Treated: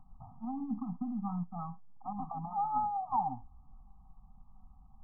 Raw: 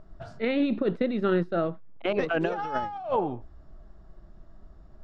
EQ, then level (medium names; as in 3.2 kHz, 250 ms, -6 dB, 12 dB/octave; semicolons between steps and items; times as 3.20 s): Chebyshev band-stop 270–760 Hz, order 5; brick-wall FIR low-pass 1.3 kHz; peaking EQ 770 Hz +10.5 dB 0.46 oct; -6.5 dB